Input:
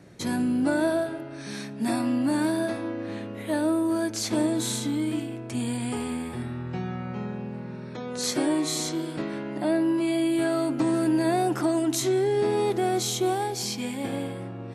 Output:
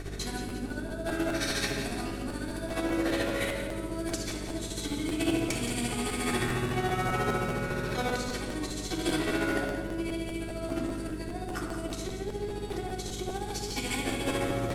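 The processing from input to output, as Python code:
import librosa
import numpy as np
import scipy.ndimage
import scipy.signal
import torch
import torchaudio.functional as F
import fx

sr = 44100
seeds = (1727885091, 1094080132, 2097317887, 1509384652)

y = fx.cvsd(x, sr, bps=64000)
y = fx.lowpass(y, sr, hz=2100.0, slope=6)
y = fx.tilt_eq(y, sr, slope=4.5)
y = fx.over_compress(y, sr, threshold_db=-40.0, ratio=-1.0)
y = fx.dmg_buzz(y, sr, base_hz=50.0, harmonics=12, level_db=-44.0, tilt_db=-4, odd_only=False)
y = y * (1.0 - 0.72 / 2.0 + 0.72 / 2.0 * np.cos(2.0 * np.pi * 14.0 * (np.arange(len(y)) / sr)))
y = fx.echo_feedback(y, sr, ms=175, feedback_pct=44, wet_db=-9)
y = fx.room_shoebox(y, sr, seeds[0], volume_m3=3800.0, walls='furnished', distance_m=3.5)
y = fx.buffer_crackle(y, sr, first_s=0.48, period_s=0.2, block=512, kind='repeat')
y = y * librosa.db_to_amplitude(4.5)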